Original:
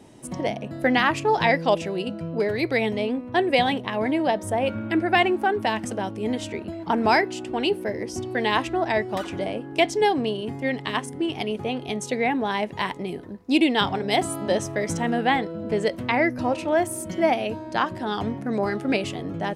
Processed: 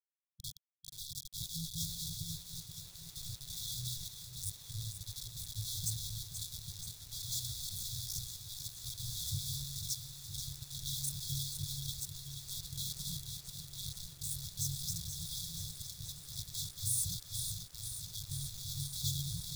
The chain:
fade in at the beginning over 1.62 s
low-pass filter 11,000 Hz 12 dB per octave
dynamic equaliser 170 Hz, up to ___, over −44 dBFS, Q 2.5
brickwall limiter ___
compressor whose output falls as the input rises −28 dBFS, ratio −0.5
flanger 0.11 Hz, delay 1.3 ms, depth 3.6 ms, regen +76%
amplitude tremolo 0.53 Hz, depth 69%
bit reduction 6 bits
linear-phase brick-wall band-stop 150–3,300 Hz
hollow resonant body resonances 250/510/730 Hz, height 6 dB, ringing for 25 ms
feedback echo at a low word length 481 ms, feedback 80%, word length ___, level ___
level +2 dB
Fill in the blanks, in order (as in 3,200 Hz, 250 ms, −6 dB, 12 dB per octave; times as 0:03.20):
+5 dB, −15 dBFS, 10 bits, −8.5 dB